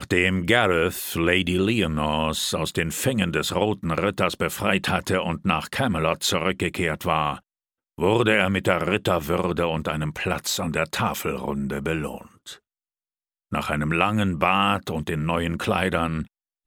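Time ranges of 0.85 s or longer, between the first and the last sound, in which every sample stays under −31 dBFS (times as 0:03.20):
0:12.54–0:13.52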